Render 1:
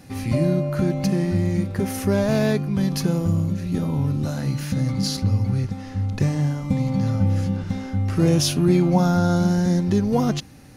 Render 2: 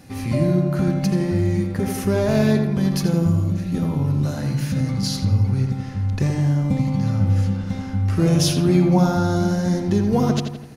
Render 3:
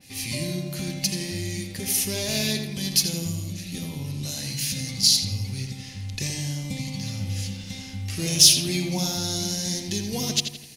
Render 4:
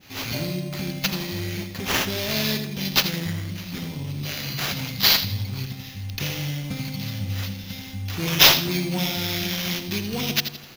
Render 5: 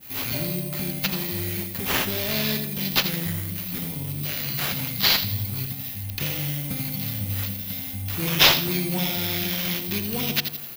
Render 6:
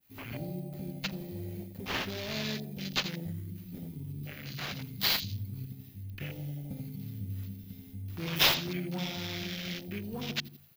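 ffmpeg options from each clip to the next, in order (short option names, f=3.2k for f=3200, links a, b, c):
-filter_complex "[0:a]asplit=2[a][b];[b]adelay=83,lowpass=f=2.9k:p=1,volume=-5dB,asplit=2[c][d];[d]adelay=83,lowpass=f=2.9k:p=1,volume=0.54,asplit=2[e][f];[f]adelay=83,lowpass=f=2.9k:p=1,volume=0.54,asplit=2[g][h];[h]adelay=83,lowpass=f=2.9k:p=1,volume=0.54,asplit=2[i][j];[j]adelay=83,lowpass=f=2.9k:p=1,volume=0.54,asplit=2[k][l];[l]adelay=83,lowpass=f=2.9k:p=1,volume=0.54,asplit=2[m][n];[n]adelay=83,lowpass=f=2.9k:p=1,volume=0.54[o];[a][c][e][g][i][k][m][o]amix=inputs=8:normalize=0"
-af "highshelf=f=2.1k:g=-8.5,aexciter=amount=8.5:drive=8.7:freq=2.1k,adynamicequalizer=threshold=0.0316:dfrequency=3100:dqfactor=0.7:tfrequency=3100:tqfactor=0.7:attack=5:release=100:ratio=0.375:range=2.5:mode=boostabove:tftype=highshelf,volume=-11.5dB"
-af "acrusher=samples=5:mix=1:aa=0.000001,volume=1dB"
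-filter_complex "[0:a]acrossover=split=6400[a][b];[b]acompressor=threshold=-42dB:ratio=4:attack=1:release=60[c];[a][c]amix=inputs=2:normalize=0,acrossover=split=2100[d][e];[e]aexciter=amount=6.6:drive=5.1:freq=8.2k[f];[d][f]amix=inputs=2:normalize=0,volume=-1dB"
-af "afwtdn=0.0224,volume=-8.5dB"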